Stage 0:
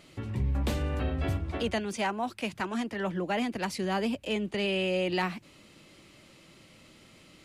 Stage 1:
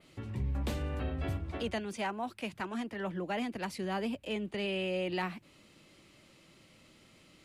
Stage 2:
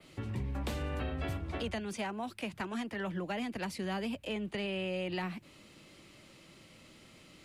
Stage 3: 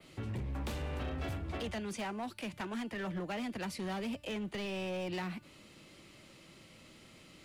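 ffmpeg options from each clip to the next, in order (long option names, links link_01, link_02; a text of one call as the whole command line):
ffmpeg -i in.wav -af "adynamicequalizer=threshold=0.00158:dfrequency=6100:dqfactor=1.2:tfrequency=6100:tqfactor=1.2:attack=5:release=100:ratio=0.375:range=2.5:mode=cutabove:tftype=bell,volume=-5dB" out.wav
ffmpeg -i in.wav -filter_complex "[0:a]acrossover=split=180|660|1700[link_01][link_02][link_03][link_04];[link_01]acompressor=threshold=-40dB:ratio=4[link_05];[link_02]acompressor=threshold=-44dB:ratio=4[link_06];[link_03]acompressor=threshold=-47dB:ratio=4[link_07];[link_04]acompressor=threshold=-46dB:ratio=4[link_08];[link_05][link_06][link_07][link_08]amix=inputs=4:normalize=0,volume=3.5dB" out.wav
ffmpeg -i in.wav -af "volume=34dB,asoftclip=hard,volume=-34dB,bandreject=frequency=295.5:width_type=h:width=4,bandreject=frequency=591:width_type=h:width=4,bandreject=frequency=886.5:width_type=h:width=4,bandreject=frequency=1182:width_type=h:width=4,bandreject=frequency=1477.5:width_type=h:width=4,bandreject=frequency=1773:width_type=h:width=4,bandreject=frequency=2068.5:width_type=h:width=4,bandreject=frequency=2364:width_type=h:width=4,bandreject=frequency=2659.5:width_type=h:width=4,bandreject=frequency=2955:width_type=h:width=4,bandreject=frequency=3250.5:width_type=h:width=4,bandreject=frequency=3546:width_type=h:width=4,bandreject=frequency=3841.5:width_type=h:width=4,bandreject=frequency=4137:width_type=h:width=4,bandreject=frequency=4432.5:width_type=h:width=4,bandreject=frequency=4728:width_type=h:width=4,bandreject=frequency=5023.5:width_type=h:width=4,bandreject=frequency=5319:width_type=h:width=4,bandreject=frequency=5614.5:width_type=h:width=4,bandreject=frequency=5910:width_type=h:width=4,bandreject=frequency=6205.5:width_type=h:width=4,bandreject=frequency=6501:width_type=h:width=4,bandreject=frequency=6796.5:width_type=h:width=4,bandreject=frequency=7092:width_type=h:width=4,bandreject=frequency=7387.5:width_type=h:width=4,bandreject=frequency=7683:width_type=h:width=4,bandreject=frequency=7978.5:width_type=h:width=4,bandreject=frequency=8274:width_type=h:width=4,bandreject=frequency=8569.5:width_type=h:width=4,bandreject=frequency=8865:width_type=h:width=4,bandreject=frequency=9160.5:width_type=h:width=4,bandreject=frequency=9456:width_type=h:width=4,bandreject=frequency=9751.5:width_type=h:width=4,bandreject=frequency=10047:width_type=h:width=4,bandreject=frequency=10342.5:width_type=h:width=4,bandreject=frequency=10638:width_type=h:width=4,bandreject=frequency=10933.5:width_type=h:width=4,bandreject=frequency=11229:width_type=h:width=4,bandreject=frequency=11524.5:width_type=h:width=4" out.wav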